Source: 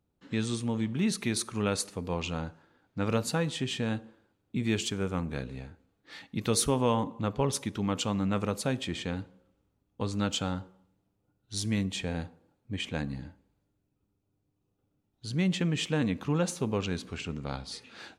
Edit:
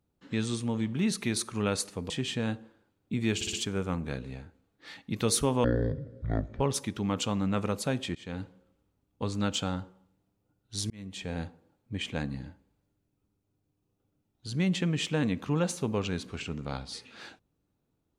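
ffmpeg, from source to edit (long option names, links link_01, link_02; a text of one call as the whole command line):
ffmpeg -i in.wav -filter_complex "[0:a]asplit=9[link_01][link_02][link_03][link_04][link_05][link_06][link_07][link_08][link_09];[link_01]atrim=end=2.102[link_10];[link_02]atrim=start=3.528:end=4.842[link_11];[link_03]atrim=start=4.778:end=4.842[link_12];[link_04]atrim=start=4.778:end=4.842[link_13];[link_05]atrim=start=4.778:end=6.894[link_14];[link_06]atrim=start=6.89:end=7.39,asetpts=PTS-STARTPTS,asetrate=22932,aresample=44100[link_15];[link_07]atrim=start=7.386:end=8.94,asetpts=PTS-STARTPTS,afade=type=out:start_time=1.55:duration=0.004:curve=hsin:silence=0.0668344[link_16];[link_08]atrim=start=8.94:end=11.69,asetpts=PTS-STARTPTS,afade=type=in:duration=0.28:silence=0.0668344,afade=type=out:start_time=2.746:duration=0.004:curve=hsin[link_17];[link_09]atrim=start=11.69,asetpts=PTS-STARTPTS,afade=type=in:duration=0.52[link_18];[link_10][link_11]acrossfade=duration=0.004:curve1=hsin:curve2=hsin[link_19];[link_19][link_12]acrossfade=duration=0.004:curve1=hsin:curve2=hsin[link_20];[link_20][link_13]acrossfade=duration=0.004:curve1=hsin:curve2=hsin[link_21];[link_21][link_14]acrossfade=duration=0.004:curve1=hsin:curve2=hsin[link_22];[link_22][link_15]acrossfade=duration=0.004:curve1=hsin:curve2=hsin[link_23];[link_16][link_17][link_18]concat=n=3:v=0:a=1[link_24];[link_23][link_24]acrossfade=duration=0.004:curve1=hsin:curve2=hsin" out.wav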